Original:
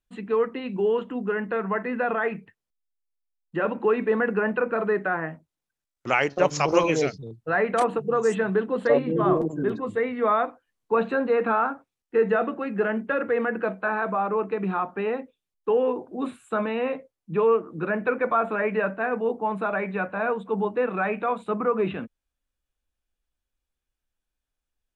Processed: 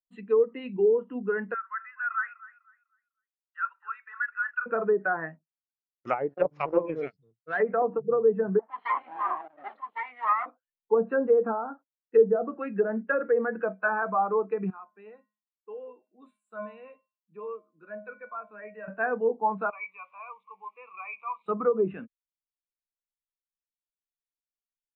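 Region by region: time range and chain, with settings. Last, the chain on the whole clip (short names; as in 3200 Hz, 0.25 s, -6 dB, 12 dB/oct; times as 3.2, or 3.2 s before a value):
1.54–4.66 ladder high-pass 1200 Hz, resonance 65% + feedback echo 0.25 s, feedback 38%, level -12.5 dB
6.34–7.6 median filter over 5 samples + HPF 61 Hz + power-law curve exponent 1.4
8.59–10.46 minimum comb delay 0.95 ms + BPF 700–6200 Hz + air absorption 240 m
14.7–18.88 tone controls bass -5 dB, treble +2 dB + resonator 210 Hz, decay 0.53 s, harmonics odd, mix 80%
19.7–21.46 zero-crossing step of -40.5 dBFS + double band-pass 1600 Hz, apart 1.1 oct
whole clip: treble ducked by the level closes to 670 Hz, closed at -18.5 dBFS; tilt shelf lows -4.5 dB, about 1100 Hz; spectral expander 1.5:1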